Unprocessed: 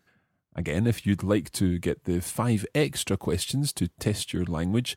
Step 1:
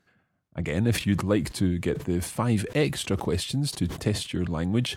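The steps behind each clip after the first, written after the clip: high shelf 10000 Hz -11 dB; sustainer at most 110 dB/s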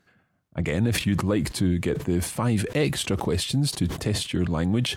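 limiter -16.5 dBFS, peak gain reduction 6 dB; gain +3.5 dB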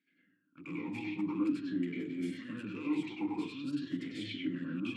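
soft clip -25 dBFS, distortion -8 dB; reverb RT60 0.40 s, pre-delay 94 ms, DRR -3.5 dB; vowel sweep i-u 0.47 Hz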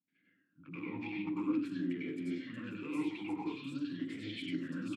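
three bands offset in time lows, mids, highs 80/710 ms, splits 220/4800 Hz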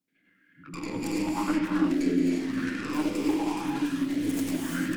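tracing distortion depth 0.5 ms; non-linear reverb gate 0.38 s rising, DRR 0 dB; LFO bell 0.92 Hz 430–1700 Hz +10 dB; gain +5.5 dB

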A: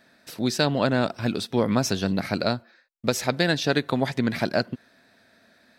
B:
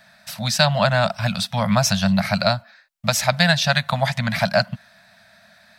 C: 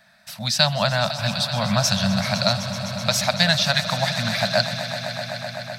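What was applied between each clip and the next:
elliptic band-stop 200–620 Hz, stop band 50 dB; gain +8 dB
swelling echo 0.127 s, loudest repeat 5, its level -14.5 dB; dynamic EQ 4200 Hz, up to +6 dB, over -35 dBFS, Q 1.3; gain -4 dB

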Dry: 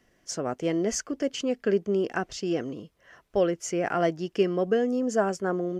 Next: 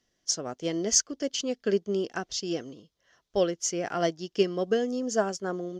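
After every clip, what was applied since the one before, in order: band shelf 4700 Hz +11 dB 1.3 oct; upward expander 1.5:1, over -42 dBFS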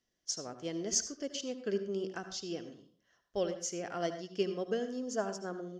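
reverb RT60 0.45 s, pre-delay 70 ms, DRR 9.5 dB; gain -8.5 dB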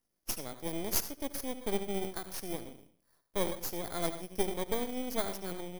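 FFT order left unsorted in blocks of 16 samples; half-wave rectifier; gain +4.5 dB

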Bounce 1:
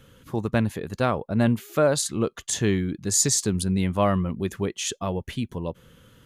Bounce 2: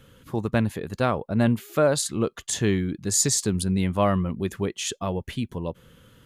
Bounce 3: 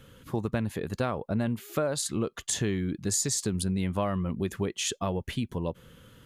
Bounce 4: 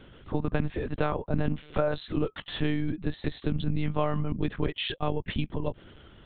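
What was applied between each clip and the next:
bell 6100 Hz -2.5 dB 0.24 oct
compressor 6:1, threshold -25 dBFS, peak gain reduction 9.5 dB
monotone LPC vocoder at 8 kHz 150 Hz; gain +2 dB

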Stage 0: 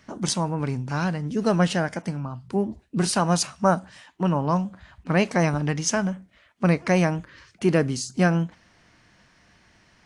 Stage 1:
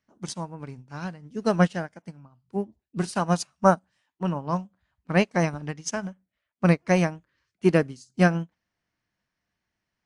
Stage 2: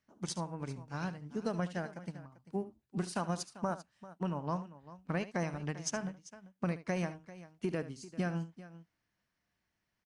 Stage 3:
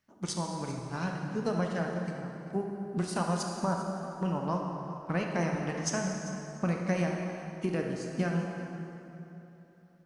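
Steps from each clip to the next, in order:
upward expander 2.5:1, over -34 dBFS; gain +3 dB
limiter -15 dBFS, peak gain reduction 10 dB; compressor 3:1, threshold -32 dBFS, peak gain reduction 10 dB; tapped delay 73/393 ms -14.5/-16.5 dB; gain -2 dB
plate-style reverb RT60 3.2 s, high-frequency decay 0.65×, DRR 1 dB; gain +3 dB

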